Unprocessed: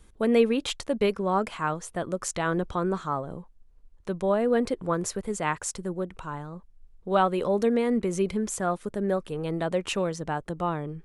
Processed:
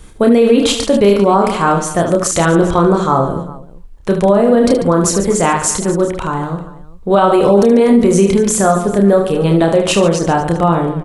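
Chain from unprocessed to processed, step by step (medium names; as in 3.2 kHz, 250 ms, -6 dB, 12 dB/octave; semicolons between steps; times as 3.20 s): dynamic bell 2 kHz, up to -6 dB, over -42 dBFS, Q 1; reverse bouncing-ball echo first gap 30 ms, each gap 1.5×, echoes 5; loudness maximiser +17 dB; trim -1 dB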